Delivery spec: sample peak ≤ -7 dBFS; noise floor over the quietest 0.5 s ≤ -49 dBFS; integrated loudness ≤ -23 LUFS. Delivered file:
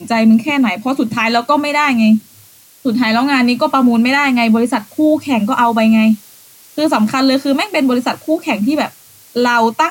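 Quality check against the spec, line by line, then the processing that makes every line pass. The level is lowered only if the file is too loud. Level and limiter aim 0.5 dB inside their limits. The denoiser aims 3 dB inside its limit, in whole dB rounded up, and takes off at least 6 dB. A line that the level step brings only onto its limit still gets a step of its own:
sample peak -2.5 dBFS: fail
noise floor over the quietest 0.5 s -44 dBFS: fail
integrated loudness -14.0 LUFS: fail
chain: trim -9.5 dB

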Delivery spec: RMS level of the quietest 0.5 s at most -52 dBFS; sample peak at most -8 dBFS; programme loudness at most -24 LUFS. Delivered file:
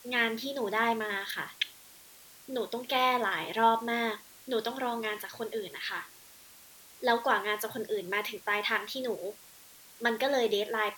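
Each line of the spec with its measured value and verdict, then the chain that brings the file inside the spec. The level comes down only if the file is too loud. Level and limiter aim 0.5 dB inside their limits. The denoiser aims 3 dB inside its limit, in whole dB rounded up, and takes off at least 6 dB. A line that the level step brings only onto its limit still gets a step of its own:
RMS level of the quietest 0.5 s -54 dBFS: pass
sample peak -11.0 dBFS: pass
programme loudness -31.0 LUFS: pass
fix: none needed

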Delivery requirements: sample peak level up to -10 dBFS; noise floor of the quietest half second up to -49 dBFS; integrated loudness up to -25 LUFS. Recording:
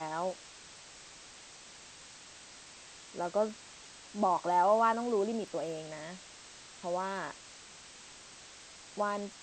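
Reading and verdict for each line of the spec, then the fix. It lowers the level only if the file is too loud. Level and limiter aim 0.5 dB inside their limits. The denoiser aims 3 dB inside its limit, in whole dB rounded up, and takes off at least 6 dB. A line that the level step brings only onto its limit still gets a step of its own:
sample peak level -16.0 dBFS: pass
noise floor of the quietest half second -53 dBFS: pass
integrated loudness -33.0 LUFS: pass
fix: none needed

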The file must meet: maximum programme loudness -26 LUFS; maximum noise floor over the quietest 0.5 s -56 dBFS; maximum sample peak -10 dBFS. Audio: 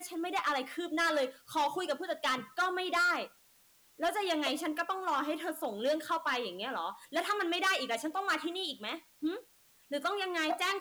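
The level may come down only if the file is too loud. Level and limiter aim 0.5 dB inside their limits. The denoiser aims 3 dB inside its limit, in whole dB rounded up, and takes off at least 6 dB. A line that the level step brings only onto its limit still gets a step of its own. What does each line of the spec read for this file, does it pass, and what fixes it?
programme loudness -33.5 LUFS: pass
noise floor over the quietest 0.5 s -65 dBFS: pass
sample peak -24.5 dBFS: pass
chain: none needed

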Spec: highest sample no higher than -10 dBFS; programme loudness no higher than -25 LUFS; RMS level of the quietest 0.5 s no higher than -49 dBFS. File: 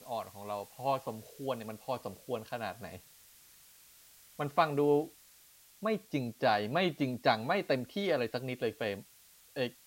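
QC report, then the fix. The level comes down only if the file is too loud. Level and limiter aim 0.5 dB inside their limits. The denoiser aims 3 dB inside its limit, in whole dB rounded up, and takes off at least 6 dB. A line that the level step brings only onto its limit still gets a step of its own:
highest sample -14.0 dBFS: pass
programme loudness -34.0 LUFS: pass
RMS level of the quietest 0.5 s -61 dBFS: pass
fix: none needed

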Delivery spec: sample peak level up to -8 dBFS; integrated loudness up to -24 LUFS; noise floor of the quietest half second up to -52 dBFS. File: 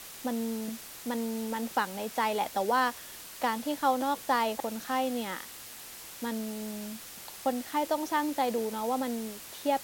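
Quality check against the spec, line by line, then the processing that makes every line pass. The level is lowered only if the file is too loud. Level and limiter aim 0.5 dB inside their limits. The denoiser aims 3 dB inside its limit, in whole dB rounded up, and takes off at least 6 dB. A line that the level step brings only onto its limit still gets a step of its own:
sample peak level -14.5 dBFS: pass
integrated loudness -31.5 LUFS: pass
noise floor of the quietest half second -46 dBFS: fail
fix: noise reduction 9 dB, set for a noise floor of -46 dBFS

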